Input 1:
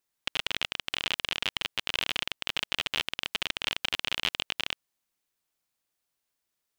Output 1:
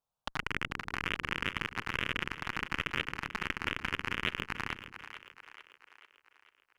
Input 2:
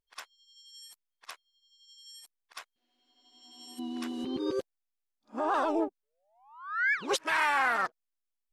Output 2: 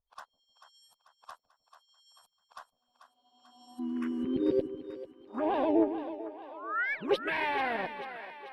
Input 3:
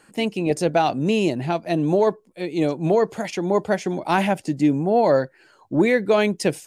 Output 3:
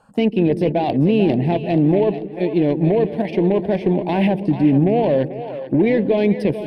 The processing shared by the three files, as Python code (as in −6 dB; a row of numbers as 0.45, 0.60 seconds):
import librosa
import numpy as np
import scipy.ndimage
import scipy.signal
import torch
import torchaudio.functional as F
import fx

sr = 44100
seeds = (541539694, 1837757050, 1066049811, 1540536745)

p1 = fx.over_compress(x, sr, threshold_db=-22.0, ratio=-0.5)
p2 = x + F.gain(torch.from_numpy(p1), -0.5).numpy()
p3 = fx.high_shelf(p2, sr, hz=2100.0, db=-10.5)
p4 = fx.cheby_harmonics(p3, sr, harmonics=(3, 5, 7, 8), levels_db=(-28, -14, -17, -42), full_scale_db=-5.0)
p5 = fx.env_phaser(p4, sr, low_hz=330.0, high_hz=1300.0, full_db=-23.0)
p6 = fx.bass_treble(p5, sr, bass_db=0, treble_db=-8)
y = p6 + fx.echo_split(p6, sr, split_hz=410.0, low_ms=153, high_ms=440, feedback_pct=52, wet_db=-11.0, dry=0)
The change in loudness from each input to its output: −4.5, −2.0, +3.0 LU